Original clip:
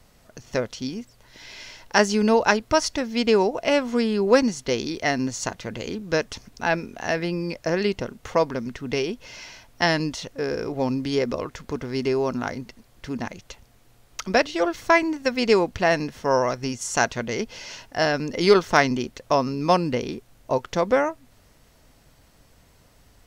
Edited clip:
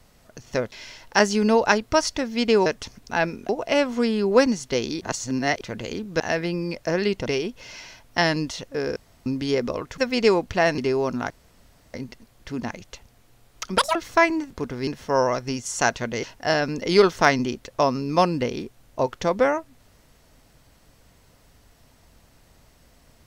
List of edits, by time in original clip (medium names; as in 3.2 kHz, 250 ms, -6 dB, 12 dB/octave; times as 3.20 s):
0.72–1.51 s: delete
4.97–5.57 s: reverse
6.16–6.99 s: move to 3.45 s
8.05–8.90 s: delete
10.60–10.90 s: room tone
11.62–11.99 s: swap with 15.23–16.03 s
12.51 s: insert room tone 0.64 s
14.35–14.68 s: speed 190%
17.39–17.75 s: delete